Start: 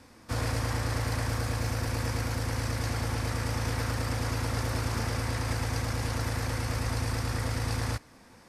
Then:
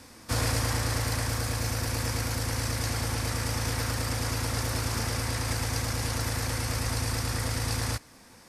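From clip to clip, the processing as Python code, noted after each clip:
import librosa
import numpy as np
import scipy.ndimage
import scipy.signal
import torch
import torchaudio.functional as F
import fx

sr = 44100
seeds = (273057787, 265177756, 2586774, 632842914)

y = fx.high_shelf(x, sr, hz=3700.0, db=8.5)
y = fx.rider(y, sr, range_db=10, speed_s=2.0)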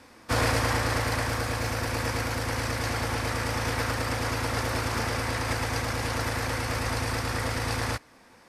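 y = fx.bass_treble(x, sr, bass_db=-7, treble_db=-10)
y = fx.upward_expand(y, sr, threshold_db=-43.0, expansion=1.5)
y = F.gain(torch.from_numpy(y), 7.5).numpy()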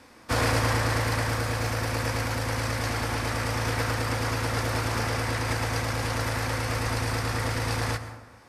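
y = fx.rev_plate(x, sr, seeds[0], rt60_s=1.1, hf_ratio=0.45, predelay_ms=105, drr_db=10.5)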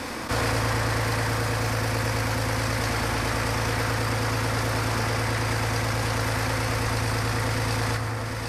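y = x + 10.0 ** (-17.5 / 20.0) * np.pad(x, (int(748 * sr / 1000.0), 0))[:len(x)]
y = fx.env_flatten(y, sr, amount_pct=70)
y = F.gain(torch.from_numpy(y), -1.5).numpy()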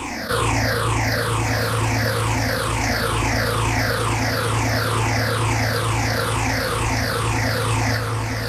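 y = fx.spec_ripple(x, sr, per_octave=0.67, drift_hz=-2.2, depth_db=16)
y = y + 10.0 ** (-12.0 / 20.0) * np.pad(y, (int(1161 * sr / 1000.0), 0))[:len(y)]
y = F.gain(torch.from_numpy(y), 2.0).numpy()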